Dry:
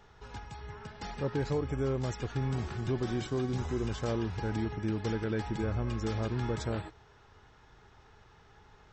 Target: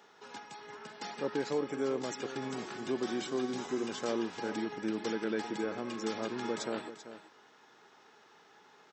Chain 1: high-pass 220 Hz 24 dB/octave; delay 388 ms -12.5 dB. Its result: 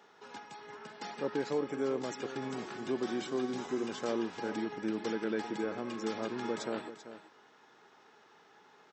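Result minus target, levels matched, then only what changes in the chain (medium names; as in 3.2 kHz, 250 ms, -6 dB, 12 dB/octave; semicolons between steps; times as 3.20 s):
8 kHz band -3.5 dB
add after high-pass: treble shelf 3.5 kHz +4.5 dB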